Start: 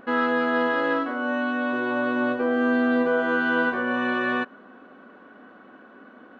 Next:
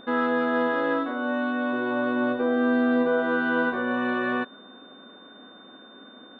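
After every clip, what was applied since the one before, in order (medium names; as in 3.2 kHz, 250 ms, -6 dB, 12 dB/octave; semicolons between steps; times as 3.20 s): treble shelf 2.3 kHz -9.5 dB; whistle 3.6 kHz -50 dBFS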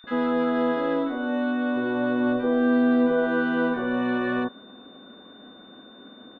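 bass shelf 140 Hz +10.5 dB; bands offset in time highs, lows 40 ms, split 1.4 kHz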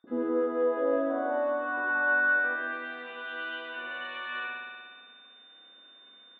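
spring tank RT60 1.7 s, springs 58 ms, chirp 50 ms, DRR -3 dB; band-pass sweep 330 Hz -> 2.8 kHz, 0.08–3.21 s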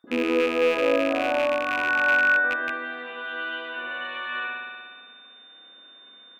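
rattle on loud lows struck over -48 dBFS, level -22 dBFS; trim +5 dB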